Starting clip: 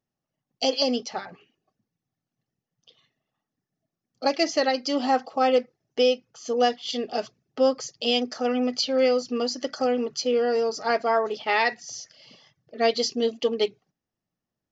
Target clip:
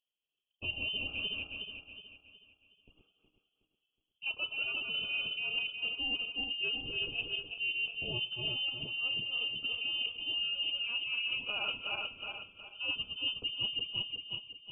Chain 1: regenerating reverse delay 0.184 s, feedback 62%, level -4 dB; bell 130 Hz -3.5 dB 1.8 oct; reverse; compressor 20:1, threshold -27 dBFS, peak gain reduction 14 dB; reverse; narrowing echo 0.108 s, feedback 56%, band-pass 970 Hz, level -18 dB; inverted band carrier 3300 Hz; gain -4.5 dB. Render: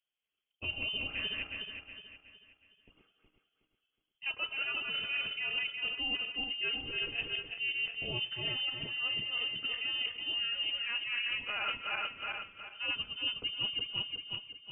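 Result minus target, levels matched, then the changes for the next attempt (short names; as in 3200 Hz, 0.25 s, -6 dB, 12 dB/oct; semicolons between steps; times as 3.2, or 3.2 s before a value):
1000 Hz band +5.5 dB
add after regenerating reverse delay: Butterworth band-stop 1400 Hz, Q 0.78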